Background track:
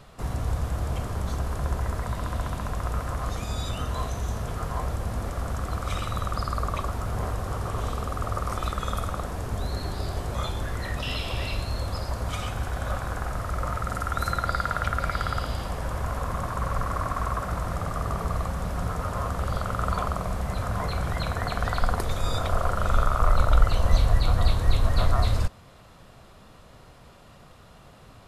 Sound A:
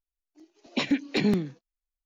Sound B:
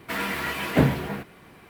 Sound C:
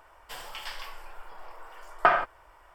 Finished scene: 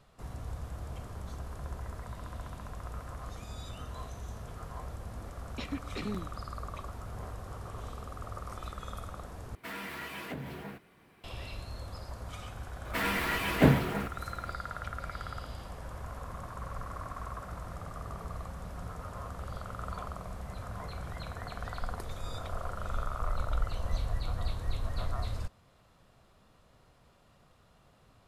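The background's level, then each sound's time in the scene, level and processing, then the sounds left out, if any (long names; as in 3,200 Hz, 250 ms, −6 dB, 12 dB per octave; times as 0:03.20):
background track −12.5 dB
0:04.81: mix in A −13.5 dB
0:09.55: overwrite with B −11.5 dB + downward compressor, threshold −24 dBFS
0:12.85: mix in B −2.5 dB
not used: C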